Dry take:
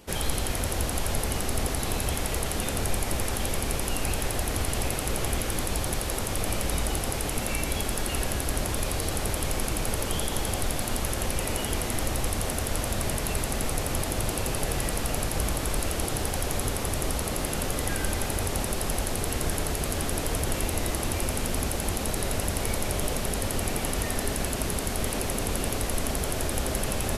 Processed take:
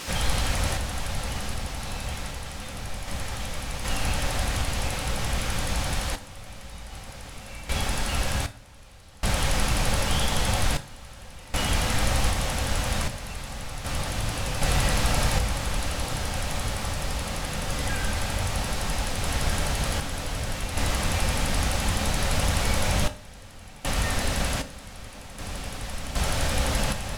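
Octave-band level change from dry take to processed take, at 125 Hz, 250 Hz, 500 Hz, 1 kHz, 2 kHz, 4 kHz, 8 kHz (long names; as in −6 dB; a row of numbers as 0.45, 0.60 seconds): +2.0, −1.5, −2.5, +2.0, +3.0, +3.0, −2.5 decibels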